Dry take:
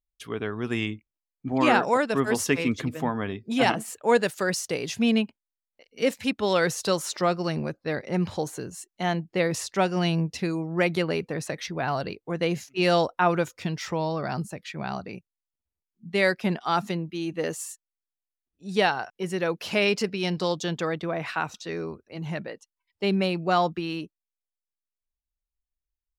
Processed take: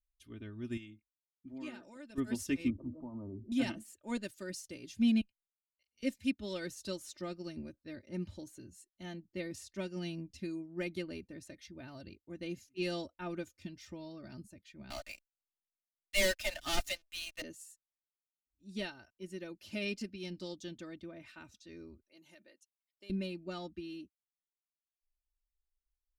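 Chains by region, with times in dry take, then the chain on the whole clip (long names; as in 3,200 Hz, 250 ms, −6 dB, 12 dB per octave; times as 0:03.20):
0:00.77–0:02.18: high-pass filter 230 Hz 6 dB per octave + downward compressor 1.5 to 1, threshold −38 dBFS
0:02.70–0:03.52: Butterworth low-pass 1,100 Hz 72 dB per octave + spectral tilt +3 dB per octave + envelope flattener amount 70%
0:05.21–0:06.03: downward compressor 1.5 to 1, threshold −38 dBFS + guitar amp tone stack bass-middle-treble 10-0-10
0:14.90–0:17.42: Butterworth high-pass 560 Hz 96 dB per octave + parametric band 990 Hz −6 dB 0.64 octaves + leveller curve on the samples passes 5
0:22.01–0:23.10: high-pass filter 450 Hz + high-shelf EQ 6,200 Hz +10.5 dB + downward compressor 4 to 1, threshold −32 dBFS
whole clip: guitar amp tone stack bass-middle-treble 10-0-1; comb filter 3.3 ms, depth 79%; expander for the loud parts 1.5 to 1, over −53 dBFS; level +10.5 dB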